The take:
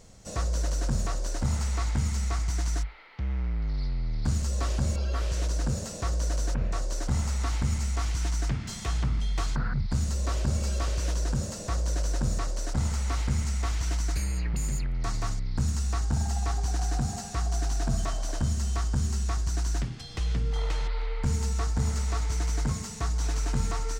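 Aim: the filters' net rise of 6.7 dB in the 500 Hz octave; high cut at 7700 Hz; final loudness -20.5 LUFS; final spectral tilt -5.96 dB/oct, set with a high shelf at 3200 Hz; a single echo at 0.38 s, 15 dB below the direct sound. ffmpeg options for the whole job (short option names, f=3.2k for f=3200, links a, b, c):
-af "lowpass=7.7k,equalizer=f=500:t=o:g=8.5,highshelf=f=3.2k:g=-3.5,aecho=1:1:380:0.178,volume=9dB"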